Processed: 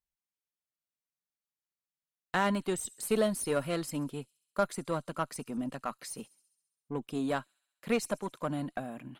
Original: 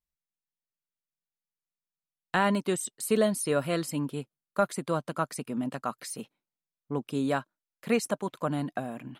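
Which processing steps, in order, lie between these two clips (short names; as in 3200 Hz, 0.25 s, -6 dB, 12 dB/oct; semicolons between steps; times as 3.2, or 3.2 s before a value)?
thin delay 67 ms, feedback 67%, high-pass 5300 Hz, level -18.5 dB; added harmonics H 8 -27 dB, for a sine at -10.5 dBFS; gain -3.5 dB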